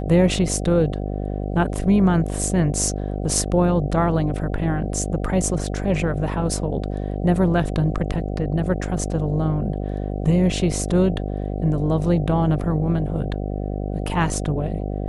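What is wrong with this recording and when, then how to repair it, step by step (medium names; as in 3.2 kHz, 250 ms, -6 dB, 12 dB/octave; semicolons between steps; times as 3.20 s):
buzz 50 Hz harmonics 15 -26 dBFS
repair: de-hum 50 Hz, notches 15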